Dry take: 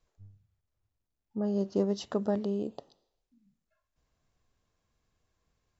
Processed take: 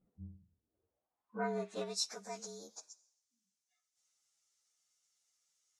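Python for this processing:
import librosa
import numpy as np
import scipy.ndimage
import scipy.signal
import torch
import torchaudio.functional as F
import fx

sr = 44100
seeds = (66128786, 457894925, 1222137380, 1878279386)

y = fx.partial_stretch(x, sr, pct=113)
y = fx.filter_sweep_bandpass(y, sr, from_hz=210.0, to_hz=6300.0, start_s=0.49, end_s=2.12, q=3.2)
y = y * librosa.db_to_amplitude(18.0)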